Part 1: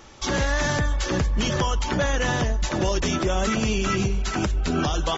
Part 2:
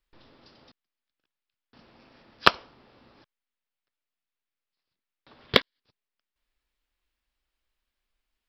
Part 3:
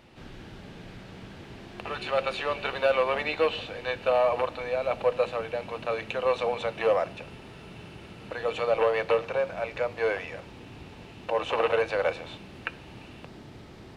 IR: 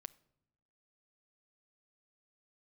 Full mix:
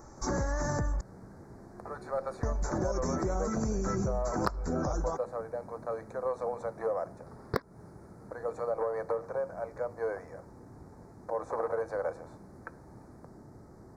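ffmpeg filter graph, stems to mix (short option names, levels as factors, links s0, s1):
-filter_complex "[0:a]volume=0.708,asplit=3[s0][s1][s2];[s0]atrim=end=1.01,asetpts=PTS-STARTPTS,afade=t=out:st=1.006:d=0.004:c=hsin[s3];[s1]atrim=start=1.01:end=2.43,asetpts=PTS-STARTPTS,volume=0[s4];[s2]atrim=start=2.43,asetpts=PTS-STARTPTS,afade=t=in:d=0.004:c=hsin[s5];[s3][s4][s5]concat=n=3:v=0:a=1[s6];[1:a]adelay=2000,volume=1.19[s7];[2:a]equalizer=f=2700:w=7.9:g=-10.5,volume=0.562[s8];[s6][s7][s8]amix=inputs=3:normalize=0,asuperstop=centerf=3000:order=4:qfactor=0.6,acompressor=threshold=0.0447:ratio=8"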